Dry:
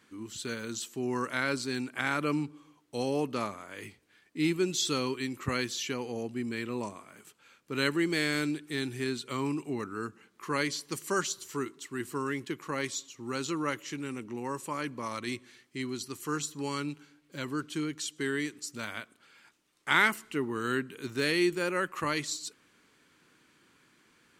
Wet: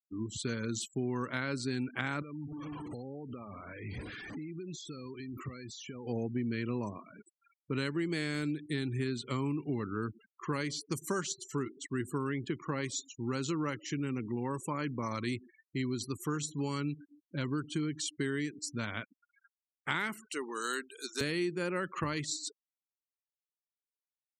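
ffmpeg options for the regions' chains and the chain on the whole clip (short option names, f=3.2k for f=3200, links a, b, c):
-filter_complex "[0:a]asettb=1/sr,asplit=3[a][b][c];[a]atrim=end=2.224[d];[b]atrim=start=2.22:end=6.07,asetpts=PTS-STARTPTS,afade=t=in:d=0.004:c=qsin,afade=t=out:st=3.846:d=0.004:c=qsin,aeval=exprs='val(0)+0.5*0.0112*sgn(val(0))':c=same,acompressor=threshold=-43dB:ratio=10:attack=3.2:release=140:knee=1:detection=peak[e];[c]atrim=start=6.066[f];[d][e]acrossfade=d=0.004:c1=hsin:c2=qsin[g];[g][f]acrossfade=d=0.004:c1=qsin:c2=hsin,asettb=1/sr,asplit=3[h][i][j];[h]atrim=end=20.294[k];[i]atrim=start=20.29:end=21.21,asetpts=PTS-STARTPTS,afade=t=in:d=0.004:c=qsin,afade=t=out:st=0.916:d=0.004:c=qsin,highpass=600,highshelf=f=3.6k:t=q:w=1.5:g=9[l];[j]atrim=start=21.206[m];[k][l]acrossfade=d=0.004:c1=hsin:c2=qsin[n];[n][m]acrossfade=d=0.004:c1=qsin:c2=hsin,afftfilt=real='re*gte(hypot(re,im),0.00631)':imag='im*gte(hypot(re,im),0.00631)':win_size=1024:overlap=0.75,equalizer=f=90:w=0.46:g=10.5,acompressor=threshold=-30dB:ratio=6"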